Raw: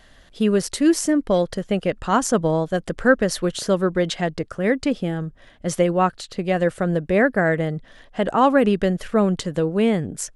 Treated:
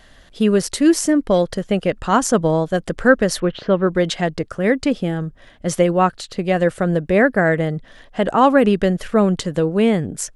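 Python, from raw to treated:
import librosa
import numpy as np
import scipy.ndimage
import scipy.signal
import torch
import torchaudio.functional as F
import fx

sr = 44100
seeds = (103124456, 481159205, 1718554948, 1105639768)

y = fx.lowpass(x, sr, hz=3100.0, slope=24, at=(3.4, 3.87))
y = y * 10.0 ** (3.0 / 20.0)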